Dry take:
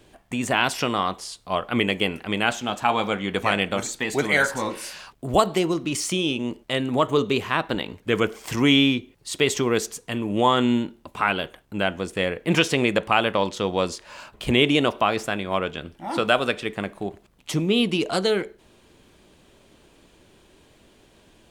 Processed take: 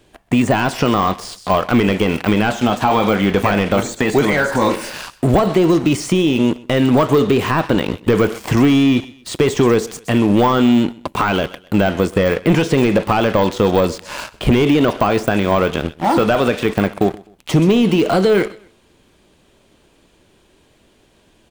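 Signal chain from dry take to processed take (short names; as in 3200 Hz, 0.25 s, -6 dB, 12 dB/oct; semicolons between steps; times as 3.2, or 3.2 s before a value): sample leveller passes 3; compressor 4:1, threshold -17 dBFS, peak gain reduction 8.5 dB; on a send: feedback echo 0.128 s, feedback 33%, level -23 dB; on the sum: de-esser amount 75%; gain +6.5 dB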